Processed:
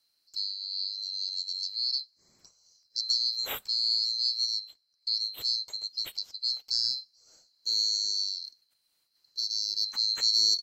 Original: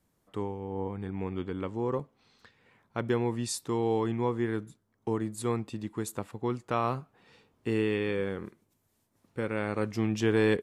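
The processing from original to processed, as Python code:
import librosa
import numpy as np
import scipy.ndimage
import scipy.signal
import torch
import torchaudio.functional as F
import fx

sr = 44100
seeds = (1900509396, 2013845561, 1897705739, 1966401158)

y = fx.band_swap(x, sr, width_hz=4000)
y = fx.lowpass(y, sr, hz=12000.0, slope=12, at=(4.53, 6.42))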